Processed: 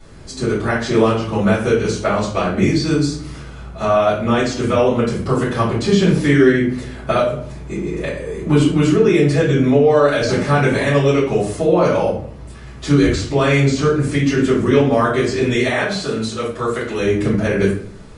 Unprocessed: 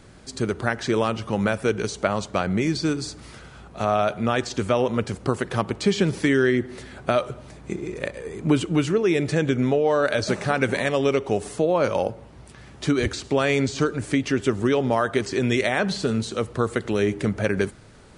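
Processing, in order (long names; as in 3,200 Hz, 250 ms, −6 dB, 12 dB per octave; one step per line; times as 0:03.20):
0:15.54–0:16.99: low-shelf EQ 340 Hz −9 dB
convolution reverb RT60 0.50 s, pre-delay 3 ms, DRR −12 dB
level −6.5 dB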